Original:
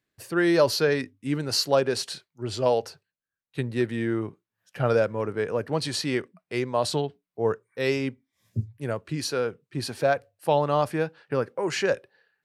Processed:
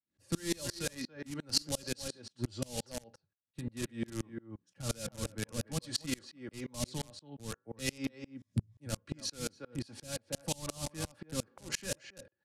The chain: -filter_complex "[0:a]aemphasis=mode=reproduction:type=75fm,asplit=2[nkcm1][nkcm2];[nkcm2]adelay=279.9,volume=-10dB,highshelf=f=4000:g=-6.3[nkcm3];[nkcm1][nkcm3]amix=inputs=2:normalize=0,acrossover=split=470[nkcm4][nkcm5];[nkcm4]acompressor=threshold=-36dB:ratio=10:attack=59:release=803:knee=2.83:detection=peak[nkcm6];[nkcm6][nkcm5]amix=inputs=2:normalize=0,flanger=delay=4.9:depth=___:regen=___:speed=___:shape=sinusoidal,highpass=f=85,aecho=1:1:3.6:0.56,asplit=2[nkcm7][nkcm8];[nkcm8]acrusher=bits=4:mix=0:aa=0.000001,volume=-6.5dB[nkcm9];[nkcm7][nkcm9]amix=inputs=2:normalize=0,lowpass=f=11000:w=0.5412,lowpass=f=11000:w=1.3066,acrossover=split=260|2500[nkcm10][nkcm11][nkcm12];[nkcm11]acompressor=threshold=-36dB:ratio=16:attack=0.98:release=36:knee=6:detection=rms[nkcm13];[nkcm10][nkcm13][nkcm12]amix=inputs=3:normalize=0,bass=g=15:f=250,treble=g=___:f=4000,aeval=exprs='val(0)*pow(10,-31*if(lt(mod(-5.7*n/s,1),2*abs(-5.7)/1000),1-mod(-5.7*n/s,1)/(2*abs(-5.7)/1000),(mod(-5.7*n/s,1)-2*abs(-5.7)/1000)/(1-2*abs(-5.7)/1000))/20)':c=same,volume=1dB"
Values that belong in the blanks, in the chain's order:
4.4, -77, 0.99, 13